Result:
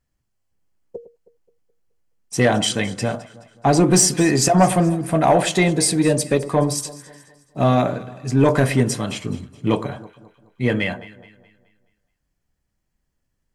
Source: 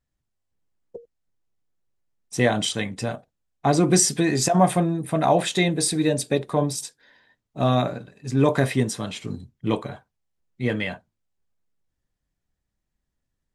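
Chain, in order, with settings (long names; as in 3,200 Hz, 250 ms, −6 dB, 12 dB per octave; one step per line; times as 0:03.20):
notch filter 3,700 Hz, Q 8.9
in parallel at −4.5 dB: sine wavefolder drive 6 dB, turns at −4.5 dBFS
on the sum: delay that swaps between a low-pass and a high-pass 106 ms, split 1,300 Hz, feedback 64%, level −14 dB
level −4 dB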